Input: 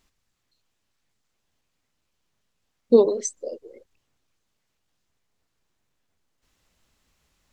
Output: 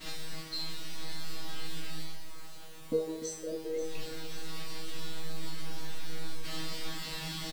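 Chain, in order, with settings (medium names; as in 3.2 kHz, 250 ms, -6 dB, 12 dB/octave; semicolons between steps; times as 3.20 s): reverse; upward compressor, threshold -27 dBFS; reverse; expander -46 dBFS; comb 6.5 ms, depth 51%; compression 6:1, threshold -41 dBFS, peak gain reduction 30 dB; graphic EQ 250/2000/4000 Hz +9/+8/+5 dB; on a send: two-band feedback delay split 2.7 kHz, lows 298 ms, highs 535 ms, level -11.5 dB; on the sum: added noise pink -56 dBFS; feedback comb 160 Hz, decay 0.51 s, harmonics all, mix 100%; trim +18 dB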